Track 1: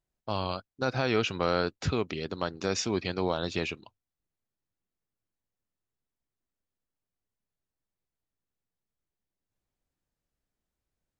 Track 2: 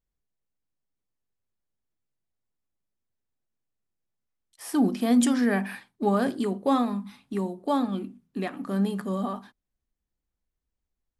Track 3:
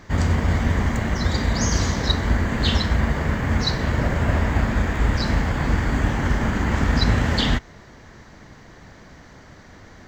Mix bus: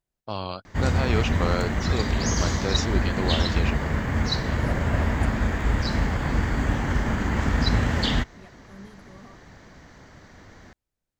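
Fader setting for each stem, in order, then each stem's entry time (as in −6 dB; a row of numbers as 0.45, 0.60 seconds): 0.0, −19.5, −3.0 decibels; 0.00, 0.00, 0.65 seconds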